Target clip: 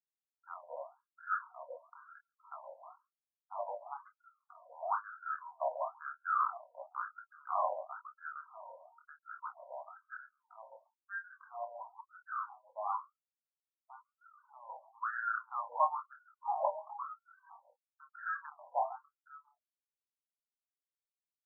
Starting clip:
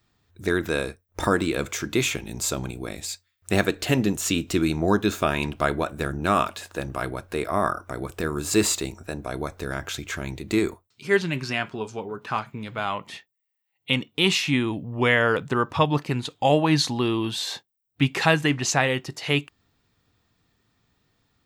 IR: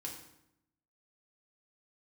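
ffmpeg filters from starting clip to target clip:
-filter_complex "[0:a]asuperstop=centerf=2600:order=12:qfactor=0.87,asettb=1/sr,asplit=3[link_01][link_02][link_03];[link_01]atrim=end=2.524[link_04];[link_02]atrim=start=2.52:end=4.08,asetpts=PTS-STARTPTS,afade=type=in:duration=0.004:curve=qsin,afade=type=out:start_time=1.556:duration=0.004:curve=qsin,aeval=exprs='clip(val(0),-1,0.0376)':channel_layout=same[link_05];[link_03]atrim=start=4.076[link_06];[link_04][link_05]acrossfade=duration=0.004:curve1=hsin:curve2=qsin[link_07];[link_07][link_06]acrossfade=duration=0.004:curve1=qsin:curve2=hsin,flanger=delay=18:depth=5.2:speed=0.85,afftfilt=real='re*gte(hypot(re,im),0.00708)':imag='im*gte(hypot(re,im),0.00708)':win_size=1024:overlap=0.75,asplit=2[link_08][link_09];[link_09]adelay=27,volume=-7dB[link_10];[link_08][link_10]amix=inputs=2:normalize=0,acrossover=split=530[link_11][link_12];[link_11]adelay=140[link_13];[link_13][link_12]amix=inputs=2:normalize=0,afftfilt=real='re*between(b*sr/1024,720*pow(1900/720,0.5+0.5*sin(2*PI*1*pts/sr))/1.41,720*pow(1900/720,0.5+0.5*sin(2*PI*1*pts/sr))*1.41)':imag='im*between(b*sr/1024,720*pow(1900/720,0.5+0.5*sin(2*PI*1*pts/sr))/1.41,720*pow(1900/720,0.5+0.5*sin(2*PI*1*pts/sr))*1.41)':win_size=1024:overlap=0.75,volume=-2.5dB"

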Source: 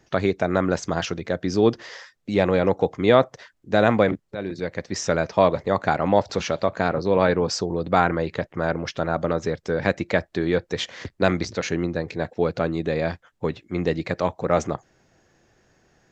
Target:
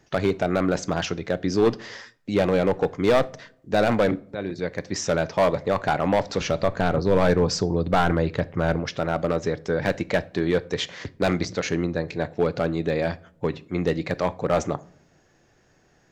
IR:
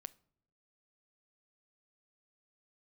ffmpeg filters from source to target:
-filter_complex "[0:a]volume=13.5dB,asoftclip=hard,volume=-13.5dB,asettb=1/sr,asplit=3[link_01][link_02][link_03];[link_01]atrim=end=6.414[link_04];[link_02]atrim=start=6.41:end=8.8,asetpts=PTS-STARTPTS,afade=type=in:duration=0.004:curve=qsin,afade=type=out:start_time=2.386:duration=0.004:curve=qsin,lowshelf=frequency=120:gain=11.5[link_05];[link_03]atrim=start=8.796[link_06];[link_04][link_05]acrossfade=duration=0.004:curve1=hsin:curve2=qsin[link_07];[link_07][link_06]acrossfade=duration=0.004:curve1=qsin:curve2=hsin[link_08];[1:a]atrim=start_sample=2205[link_09];[link_08][link_09]afir=irnorm=-1:irlink=0,volume=5.5dB"

